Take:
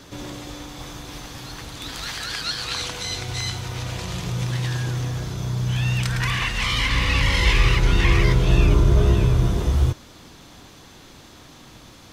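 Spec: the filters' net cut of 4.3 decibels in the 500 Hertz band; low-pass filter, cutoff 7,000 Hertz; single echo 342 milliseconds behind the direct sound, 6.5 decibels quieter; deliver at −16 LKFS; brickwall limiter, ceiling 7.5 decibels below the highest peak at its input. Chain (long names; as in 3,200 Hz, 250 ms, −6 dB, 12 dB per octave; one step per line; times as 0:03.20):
low-pass filter 7,000 Hz
parametric band 500 Hz −6 dB
brickwall limiter −13 dBFS
single-tap delay 342 ms −6.5 dB
level +8 dB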